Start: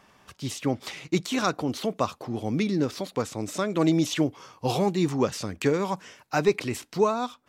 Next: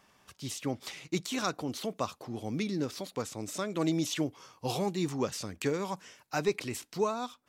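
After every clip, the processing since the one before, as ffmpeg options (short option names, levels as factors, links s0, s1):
-af "highshelf=f=4000:g=6.5,volume=0.422"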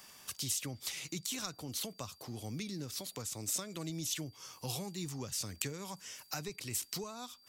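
-filter_complex "[0:a]acrossover=split=130[s0][s1];[s1]acompressor=threshold=0.00501:ratio=5[s2];[s0][s2]amix=inputs=2:normalize=0,aeval=exprs='val(0)+0.0002*sin(2*PI*4700*n/s)':c=same,crystalizer=i=4.5:c=0,volume=1.12"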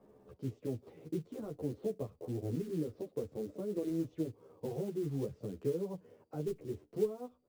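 -filter_complex "[0:a]lowpass=f=450:t=q:w=3.4,acrusher=bits=6:mode=log:mix=0:aa=0.000001,asplit=2[s0][s1];[s1]adelay=11.3,afreqshift=-0.58[s2];[s0][s2]amix=inputs=2:normalize=1,volume=1.78"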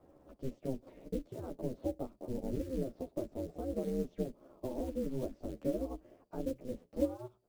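-af "aeval=exprs='val(0)*sin(2*PI*130*n/s)':c=same,volume=1.41"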